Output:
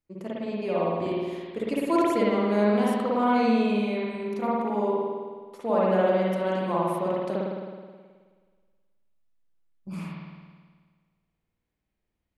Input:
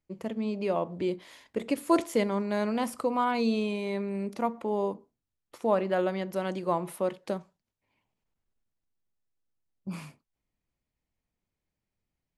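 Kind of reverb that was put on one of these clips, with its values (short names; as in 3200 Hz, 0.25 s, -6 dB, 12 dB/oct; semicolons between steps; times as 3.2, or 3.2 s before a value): spring tank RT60 1.6 s, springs 53 ms, chirp 25 ms, DRR -6.5 dB; gain -3.5 dB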